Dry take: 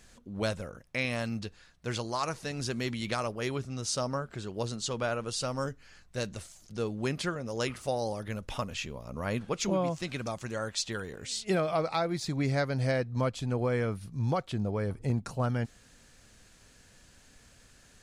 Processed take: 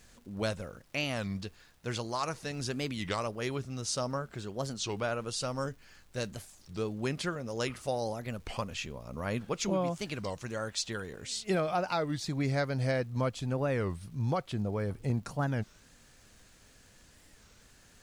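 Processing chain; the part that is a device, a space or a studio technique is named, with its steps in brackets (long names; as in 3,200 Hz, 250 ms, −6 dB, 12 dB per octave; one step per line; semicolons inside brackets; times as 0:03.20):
warped LP (wow of a warped record 33 1/3 rpm, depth 250 cents; surface crackle 150 per second −51 dBFS; pink noise bed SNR 35 dB)
level −1.5 dB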